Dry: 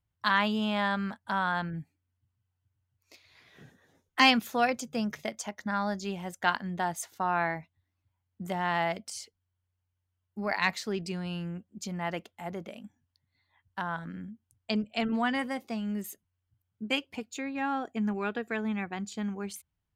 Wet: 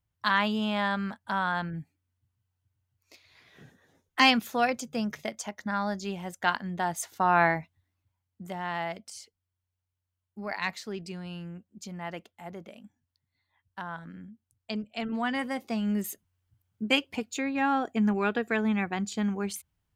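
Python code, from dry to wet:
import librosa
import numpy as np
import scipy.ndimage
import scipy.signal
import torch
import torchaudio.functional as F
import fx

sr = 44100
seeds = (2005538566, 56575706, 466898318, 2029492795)

y = fx.gain(x, sr, db=fx.line((6.77, 0.5), (7.45, 7.0), (8.43, -4.0), (14.98, -4.0), (15.88, 5.0)))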